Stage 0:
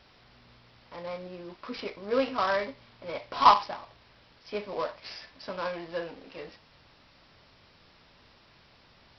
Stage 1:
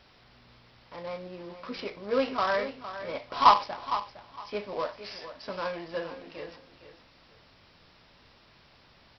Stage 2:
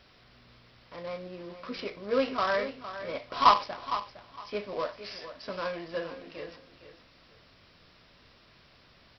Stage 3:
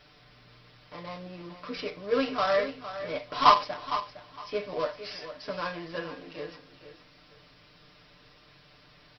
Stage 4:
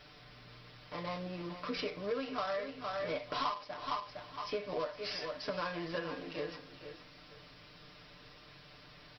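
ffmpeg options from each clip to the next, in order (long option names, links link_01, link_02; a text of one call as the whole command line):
ffmpeg -i in.wav -af "aecho=1:1:460|920|1380:0.251|0.0527|0.0111" out.wav
ffmpeg -i in.wav -af "equalizer=frequency=860:width_type=o:width=0.24:gain=-7" out.wav
ffmpeg -i in.wav -af "aecho=1:1:6.7:0.77" out.wav
ffmpeg -i in.wav -af "acompressor=threshold=-34dB:ratio=10,volume=1dB" out.wav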